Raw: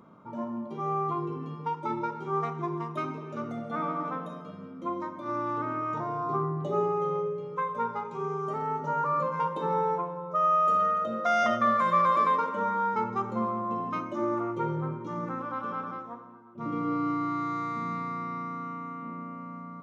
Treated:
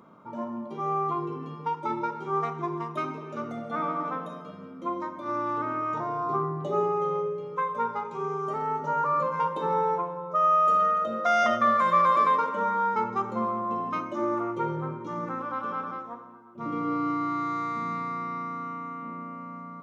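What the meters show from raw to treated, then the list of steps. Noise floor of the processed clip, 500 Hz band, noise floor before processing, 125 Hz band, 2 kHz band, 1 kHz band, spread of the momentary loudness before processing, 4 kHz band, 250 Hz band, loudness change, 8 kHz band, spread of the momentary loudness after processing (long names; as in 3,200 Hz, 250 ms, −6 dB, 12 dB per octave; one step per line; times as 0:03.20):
−43 dBFS, +1.5 dB, −43 dBFS, −2.0 dB, +2.5 dB, +2.5 dB, 14 LU, +2.5 dB, 0.0 dB, +2.0 dB, can't be measured, 14 LU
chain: low-shelf EQ 200 Hz −7 dB
level +2.5 dB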